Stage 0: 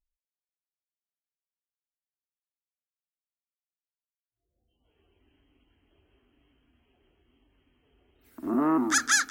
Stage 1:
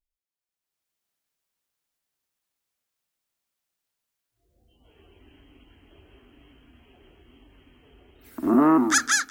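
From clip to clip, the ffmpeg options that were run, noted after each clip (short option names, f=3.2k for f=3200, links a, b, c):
-af "dynaudnorm=f=270:g=5:m=16dB,volume=-3dB"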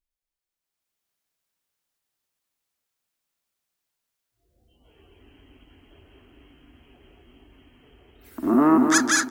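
-af "aecho=1:1:227|454|681|908:0.501|0.175|0.0614|0.0215"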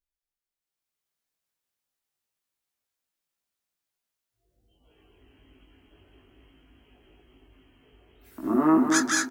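-filter_complex "[0:a]asplit=2[a][b];[b]adelay=19,volume=-2dB[c];[a][c]amix=inputs=2:normalize=0,volume=-6.5dB"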